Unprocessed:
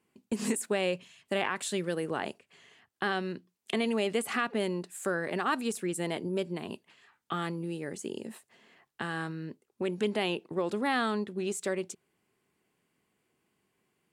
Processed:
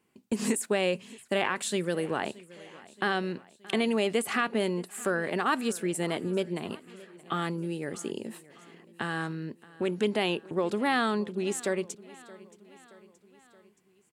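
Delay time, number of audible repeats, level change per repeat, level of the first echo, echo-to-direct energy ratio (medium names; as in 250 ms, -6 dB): 624 ms, 3, -5.0 dB, -21.0 dB, -19.5 dB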